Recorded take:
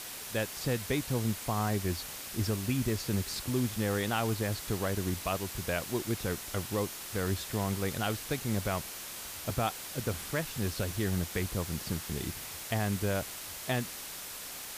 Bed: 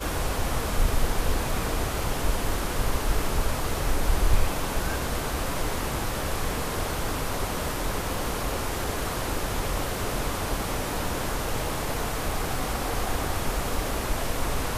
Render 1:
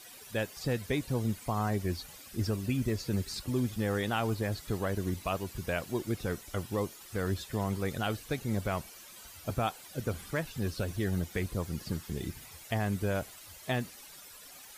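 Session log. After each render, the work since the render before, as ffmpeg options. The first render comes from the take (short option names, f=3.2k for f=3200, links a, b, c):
-af "afftdn=nr=13:nf=-43"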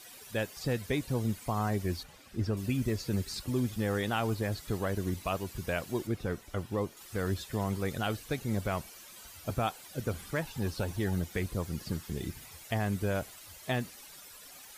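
-filter_complex "[0:a]asettb=1/sr,asplit=3[a][b][c];[a]atrim=end=2.034[d];[b]atrim=start=2.03:end=2.57,asetpts=PTS-STARTPTS,afade=t=in:d=0.004:c=qsin,afade=t=out:st=0.536:d=0.004:c=qsin,lowpass=f=2.6k:p=1[e];[c]atrim=start=2.566[f];[d][e]acrossfade=d=0.004:c1=hsin:c2=qsin[g];[g][f]acrossfade=d=0.004:c1=qsin:c2=hsin,asettb=1/sr,asplit=3[h][i][j];[h]atrim=end=6.074[k];[i]atrim=start=6.07:end=6.97,asetpts=PTS-STARTPTS,afade=t=in:d=0.004:c=qsin,afade=t=out:st=0.896:d=0.004:c=qsin,highshelf=f=3.5k:g=-8.5[l];[j]atrim=start=6.966[m];[k][l]acrossfade=d=0.004:c1=hsin:c2=qsin[n];[n][m]acrossfade=d=0.004:c1=qsin:c2=hsin,asettb=1/sr,asplit=3[o][p][q];[o]atrim=end=10.414[r];[p]atrim=start=10.41:end=11.13,asetpts=PTS-STARTPTS,afade=t=in:d=0.004:c=qsin,afade=t=out:st=0.716:d=0.004:c=qsin,equalizer=f=870:w=5.3:g=11.5[s];[q]atrim=start=11.126[t];[r][s]acrossfade=d=0.004:c1=hsin:c2=qsin[u];[u][t]acrossfade=d=0.004:c1=qsin:c2=hsin"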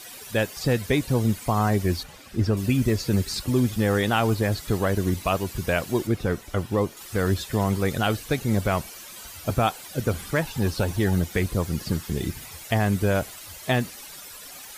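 -af "volume=9dB"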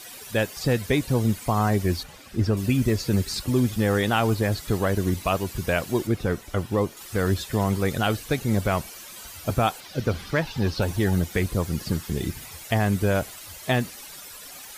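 -filter_complex "[0:a]asettb=1/sr,asplit=3[a][b][c];[a]atrim=end=9.804[d];[b]atrim=start=9.8:end=10.82,asetpts=PTS-STARTPTS,afade=t=in:d=0.004:c=qsin,afade=t=out:st=1.016:d=0.004:c=qsin,highshelf=f=6.4k:t=q:w=1.5:g=-7.5[e];[c]atrim=start=10.816[f];[d][e]acrossfade=d=0.004:c1=hsin:c2=qsin[g];[g][f]acrossfade=d=0.004:c1=qsin:c2=hsin"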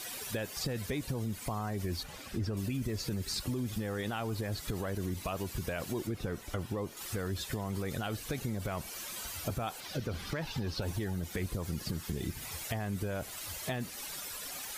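-af "alimiter=limit=-18dB:level=0:latency=1:release=36,acompressor=threshold=-35dB:ratio=2.5"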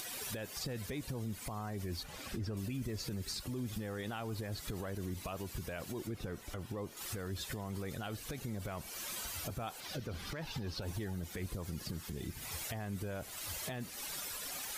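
-af "acompressor=mode=upward:threshold=-40dB:ratio=2.5,alimiter=level_in=6.5dB:limit=-24dB:level=0:latency=1:release=323,volume=-6.5dB"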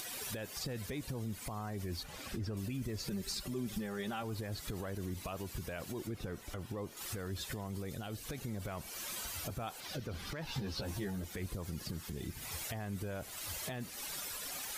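-filter_complex "[0:a]asettb=1/sr,asplit=3[a][b][c];[a]atrim=end=3.074[d];[b]atrim=start=3.07:end=4.23,asetpts=PTS-STARTPTS,afade=t=in:d=0.004:c=qsin,afade=t=out:st=1.156:d=0.004:c=qsin,aecho=1:1:5.1:0.65,atrim=end_sample=51156[e];[c]atrim=start=4.226[f];[d][e]acrossfade=d=0.004:c1=hsin:c2=qsin[g];[g][f]acrossfade=d=0.004:c1=qsin:c2=hsin,asettb=1/sr,asplit=3[h][i][j];[h]atrim=end=7.674[k];[i]atrim=start=7.67:end=8.24,asetpts=PTS-STARTPTS,afade=t=in:d=0.004:c=qsin,afade=t=out:st=0.566:d=0.004:c=qsin,equalizer=f=1.4k:w=0.67:g=-5[l];[j]atrim=start=8.236[m];[k][l]acrossfade=d=0.004:c1=hsin:c2=qsin[n];[n][m]acrossfade=d=0.004:c1=qsin:c2=hsin,asettb=1/sr,asplit=3[o][p][q];[o]atrim=end=10.474[r];[p]atrim=start=10.47:end=11.25,asetpts=PTS-STARTPTS,afade=t=in:d=0.004:c=qsin,afade=t=out:st=0.776:d=0.004:c=qsin,asplit=2[s][t];[t]adelay=15,volume=-2.5dB[u];[s][u]amix=inputs=2:normalize=0,atrim=end_sample=34398[v];[q]atrim=start=11.246[w];[r][v]acrossfade=d=0.004:c1=hsin:c2=qsin[x];[x][w]acrossfade=d=0.004:c1=qsin:c2=hsin"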